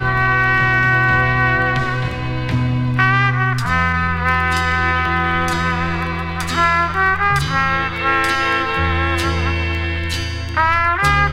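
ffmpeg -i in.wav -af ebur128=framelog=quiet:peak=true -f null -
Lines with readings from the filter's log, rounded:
Integrated loudness:
  I:         -16.4 LUFS
  Threshold: -26.4 LUFS
Loudness range:
  LRA:         1.9 LU
  Threshold: -36.7 LUFS
  LRA low:   -17.4 LUFS
  LRA high:  -15.6 LUFS
True peak:
  Peak:       -1.3 dBFS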